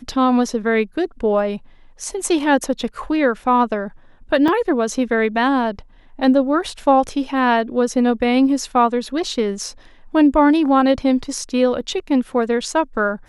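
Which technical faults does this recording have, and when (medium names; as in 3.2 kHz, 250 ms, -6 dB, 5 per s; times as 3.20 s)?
4.48 s: dropout 3.9 ms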